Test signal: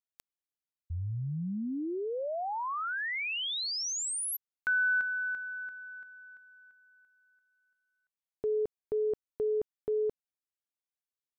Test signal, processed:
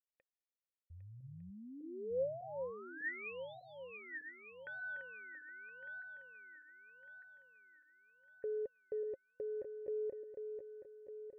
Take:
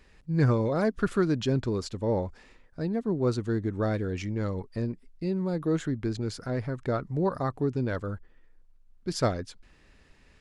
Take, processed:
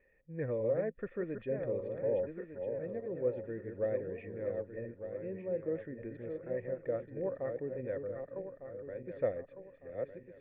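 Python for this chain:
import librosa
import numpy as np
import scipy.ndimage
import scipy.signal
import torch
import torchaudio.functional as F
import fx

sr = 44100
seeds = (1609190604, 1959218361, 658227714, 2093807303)

y = fx.reverse_delay_fb(x, sr, ms=602, feedback_pct=60, wet_db=-6.0)
y = fx.formant_cascade(y, sr, vowel='e')
y = y * 10.0 ** (1.5 / 20.0)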